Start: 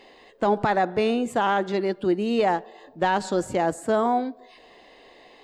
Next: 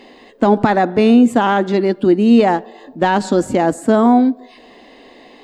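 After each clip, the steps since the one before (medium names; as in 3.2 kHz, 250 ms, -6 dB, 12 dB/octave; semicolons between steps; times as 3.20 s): peaking EQ 250 Hz +11 dB 0.66 oct; trim +6.5 dB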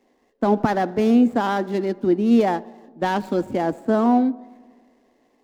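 median filter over 15 samples; filtered feedback delay 87 ms, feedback 82%, low-pass 2.1 kHz, level -24 dB; three bands expanded up and down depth 40%; trim -6.5 dB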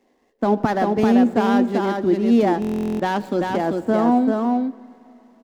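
delay 390 ms -3.5 dB; on a send at -21.5 dB: reverberation RT60 3.7 s, pre-delay 25 ms; on the sum: buffer glitch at 2.60 s, samples 1024, times 16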